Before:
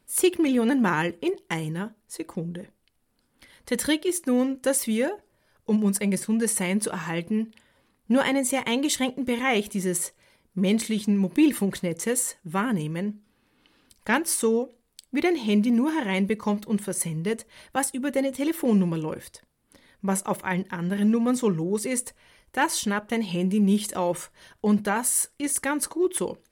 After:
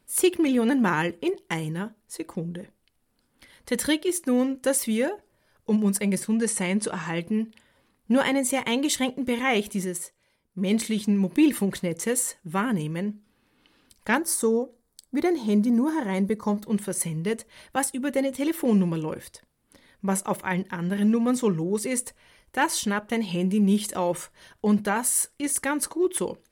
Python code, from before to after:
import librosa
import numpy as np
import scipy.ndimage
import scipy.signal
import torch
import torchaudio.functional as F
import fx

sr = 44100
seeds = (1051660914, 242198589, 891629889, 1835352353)

y = fx.lowpass(x, sr, hz=9900.0, slope=24, at=(6.34, 7.15))
y = fx.upward_expand(y, sr, threshold_db=-32.0, expansion=1.5, at=(9.84, 10.7), fade=0.02)
y = fx.peak_eq(y, sr, hz=2700.0, db=-13.5, octaves=0.7, at=(14.15, 16.64))